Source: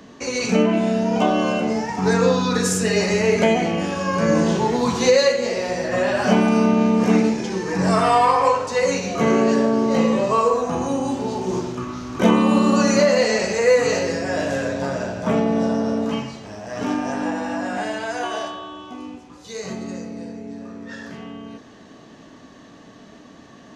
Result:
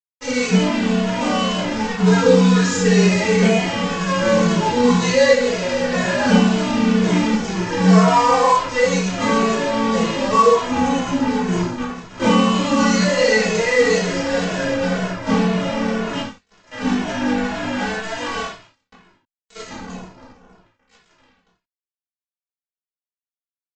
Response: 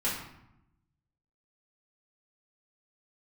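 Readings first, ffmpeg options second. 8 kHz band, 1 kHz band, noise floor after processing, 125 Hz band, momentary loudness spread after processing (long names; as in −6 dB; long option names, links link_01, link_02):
+1.5 dB, +2.0 dB, below −85 dBFS, +5.0 dB, 10 LU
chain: -filter_complex "[0:a]aresample=16000,acrusher=bits=3:mix=0:aa=0.5,aresample=44100[link_01];[1:a]atrim=start_sample=2205,atrim=end_sample=4410[link_02];[link_01][link_02]afir=irnorm=-1:irlink=0,asplit=2[link_03][link_04];[link_04]adelay=2.3,afreqshift=-2[link_05];[link_03][link_05]amix=inputs=2:normalize=1,volume=-2dB"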